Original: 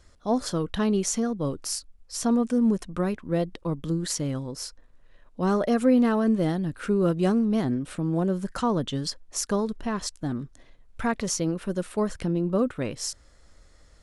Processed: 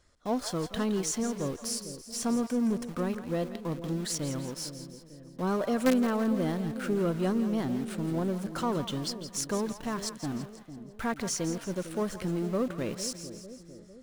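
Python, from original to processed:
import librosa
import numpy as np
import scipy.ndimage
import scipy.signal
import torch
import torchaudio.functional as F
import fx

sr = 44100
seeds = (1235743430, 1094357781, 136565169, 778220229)

p1 = fx.low_shelf(x, sr, hz=90.0, db=-7.5)
p2 = fx.quant_companded(p1, sr, bits=2)
p3 = p1 + (p2 * librosa.db_to_amplitude(-10.5))
p4 = fx.echo_split(p3, sr, split_hz=610.0, low_ms=451, high_ms=167, feedback_pct=52, wet_db=-11)
y = p4 * librosa.db_to_amplitude(-6.5)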